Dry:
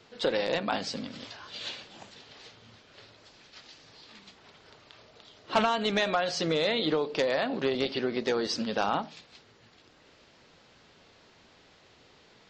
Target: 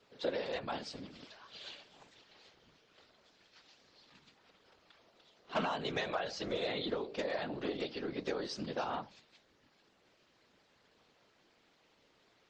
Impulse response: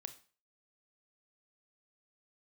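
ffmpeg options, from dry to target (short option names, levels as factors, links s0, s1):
-af "highpass=150,afftfilt=real='hypot(re,im)*cos(2*PI*random(0))':imag='hypot(re,im)*sin(2*PI*random(1))':win_size=512:overlap=0.75,volume=0.75" -ar 48000 -c:a libopus -b:a 24k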